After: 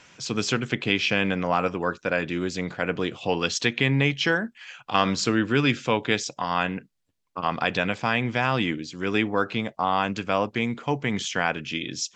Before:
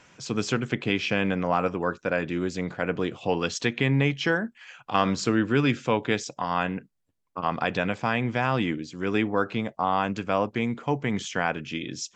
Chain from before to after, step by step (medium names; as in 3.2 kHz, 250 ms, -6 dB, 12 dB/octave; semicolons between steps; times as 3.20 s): peaking EQ 4 kHz +6 dB 2.2 oct